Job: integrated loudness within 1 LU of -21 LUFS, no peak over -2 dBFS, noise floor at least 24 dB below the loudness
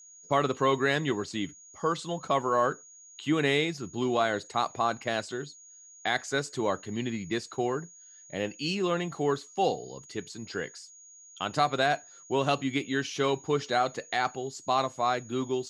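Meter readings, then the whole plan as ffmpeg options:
steady tone 6.7 kHz; tone level -50 dBFS; loudness -29.5 LUFS; peak level -11.5 dBFS; loudness target -21.0 LUFS
-> -af "bandreject=f=6700:w=30"
-af "volume=2.66"

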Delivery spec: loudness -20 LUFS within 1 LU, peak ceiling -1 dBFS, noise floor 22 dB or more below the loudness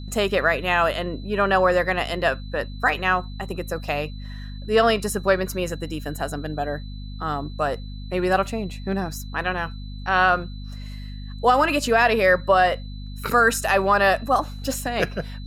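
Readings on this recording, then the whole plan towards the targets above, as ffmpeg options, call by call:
hum 50 Hz; highest harmonic 250 Hz; hum level -32 dBFS; steady tone 4 kHz; tone level -47 dBFS; loudness -22.0 LUFS; peak level -6.5 dBFS; loudness target -20.0 LUFS
-> -af "bandreject=f=50:t=h:w=6,bandreject=f=100:t=h:w=6,bandreject=f=150:t=h:w=6,bandreject=f=200:t=h:w=6,bandreject=f=250:t=h:w=6"
-af "bandreject=f=4000:w=30"
-af "volume=1.26"

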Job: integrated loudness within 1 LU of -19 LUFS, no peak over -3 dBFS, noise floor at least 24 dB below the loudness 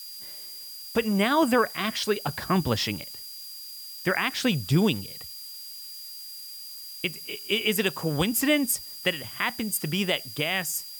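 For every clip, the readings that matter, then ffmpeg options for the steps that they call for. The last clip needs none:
steady tone 4.8 kHz; tone level -41 dBFS; noise floor -41 dBFS; noise floor target -50 dBFS; loudness -26.0 LUFS; peak level -11.0 dBFS; loudness target -19.0 LUFS
-> -af "bandreject=f=4800:w=30"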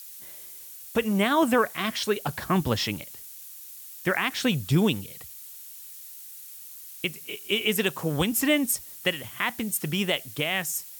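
steady tone not found; noise floor -44 dBFS; noise floor target -50 dBFS
-> -af "afftdn=nr=6:nf=-44"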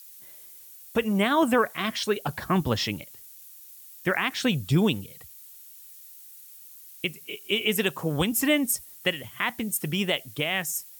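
noise floor -48 dBFS; noise floor target -50 dBFS
-> -af "afftdn=nr=6:nf=-48"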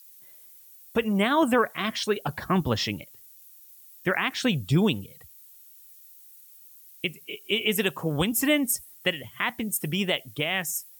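noise floor -51 dBFS; loudness -26.0 LUFS; peak level -11.5 dBFS; loudness target -19.0 LUFS
-> -af "volume=2.24"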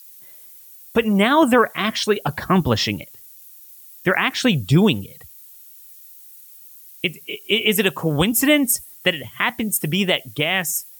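loudness -19.0 LUFS; peak level -4.5 dBFS; noise floor -44 dBFS

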